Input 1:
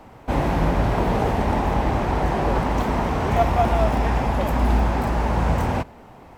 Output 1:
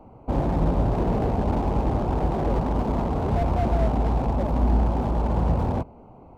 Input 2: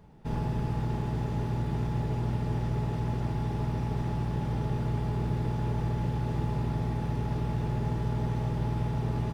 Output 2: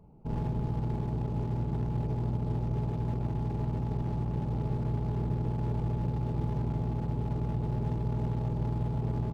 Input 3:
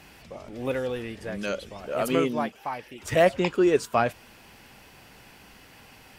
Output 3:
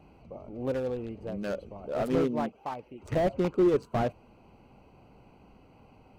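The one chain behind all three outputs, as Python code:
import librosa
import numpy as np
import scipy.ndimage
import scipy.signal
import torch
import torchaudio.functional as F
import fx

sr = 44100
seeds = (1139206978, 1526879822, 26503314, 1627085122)

y = fx.wiener(x, sr, points=25)
y = fx.slew_limit(y, sr, full_power_hz=47.0)
y = y * 10.0 ** (-1.0 / 20.0)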